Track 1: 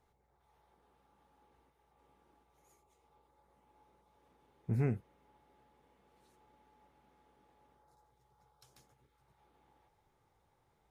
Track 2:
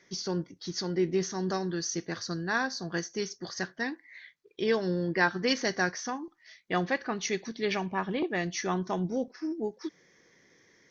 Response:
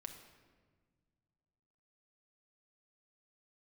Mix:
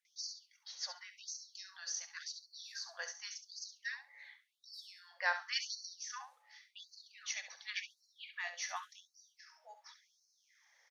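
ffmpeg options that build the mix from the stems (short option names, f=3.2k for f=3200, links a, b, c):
-filter_complex "[0:a]volume=-3.5dB,asplit=2[a][b];[b]volume=-4.5dB[c];[1:a]highpass=580,adelay=50,volume=-6dB,asplit=2[d][e];[e]volume=-10dB[f];[c][f]amix=inputs=2:normalize=0,aecho=0:1:68|136|204:1|0.17|0.0289[g];[a][d][g]amix=inputs=3:normalize=0,equalizer=f=560:t=o:w=2.6:g=-2.5,afftfilt=real='re*gte(b*sr/1024,470*pow(4100/470,0.5+0.5*sin(2*PI*0.9*pts/sr)))':imag='im*gte(b*sr/1024,470*pow(4100/470,0.5+0.5*sin(2*PI*0.9*pts/sr)))':win_size=1024:overlap=0.75"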